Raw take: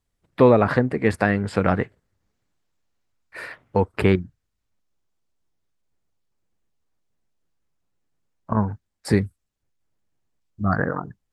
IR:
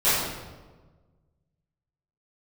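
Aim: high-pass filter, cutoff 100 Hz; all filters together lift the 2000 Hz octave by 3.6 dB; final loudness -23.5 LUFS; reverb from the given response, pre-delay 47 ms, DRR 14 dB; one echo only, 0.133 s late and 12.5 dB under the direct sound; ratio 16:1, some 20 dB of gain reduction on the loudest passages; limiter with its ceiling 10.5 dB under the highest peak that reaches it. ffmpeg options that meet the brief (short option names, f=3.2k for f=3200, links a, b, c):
-filter_complex "[0:a]highpass=100,equalizer=f=2k:t=o:g=4.5,acompressor=threshold=-29dB:ratio=16,alimiter=limit=-24dB:level=0:latency=1,aecho=1:1:133:0.237,asplit=2[a][b];[1:a]atrim=start_sample=2205,adelay=47[c];[b][c]afir=irnorm=-1:irlink=0,volume=-31.5dB[d];[a][d]amix=inputs=2:normalize=0,volume=14.5dB"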